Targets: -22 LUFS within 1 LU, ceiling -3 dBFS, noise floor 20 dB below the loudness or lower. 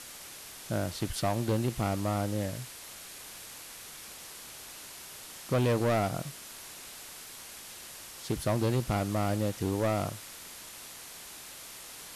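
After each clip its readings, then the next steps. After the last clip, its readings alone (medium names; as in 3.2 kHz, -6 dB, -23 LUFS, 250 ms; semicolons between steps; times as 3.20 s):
clipped samples 1.6%; clipping level -22.5 dBFS; noise floor -47 dBFS; noise floor target -54 dBFS; loudness -34.0 LUFS; peak level -22.5 dBFS; loudness target -22.0 LUFS
-> clip repair -22.5 dBFS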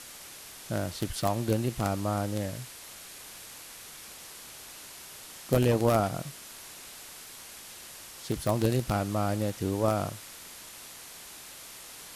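clipped samples 0.0%; noise floor -47 dBFS; noise floor target -50 dBFS
-> noise reduction 6 dB, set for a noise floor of -47 dBFS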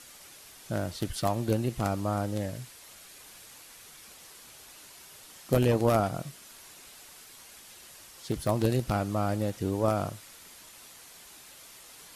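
noise floor -51 dBFS; loudness -29.5 LUFS; peak level -13.5 dBFS; loudness target -22.0 LUFS
-> trim +7.5 dB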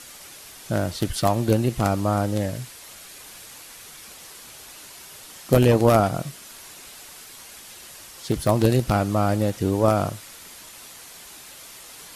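loudness -22.0 LUFS; peak level -6.0 dBFS; noise floor -44 dBFS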